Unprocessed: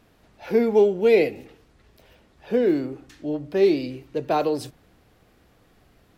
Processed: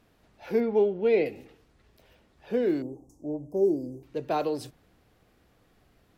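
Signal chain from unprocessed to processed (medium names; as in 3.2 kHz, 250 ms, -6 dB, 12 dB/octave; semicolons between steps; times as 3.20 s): 0.60–1.26 s: distance through air 190 m; 2.82–4.03 s: inverse Chebyshev band-stop 1.4–4.1 kHz, stop band 40 dB; trim -5.5 dB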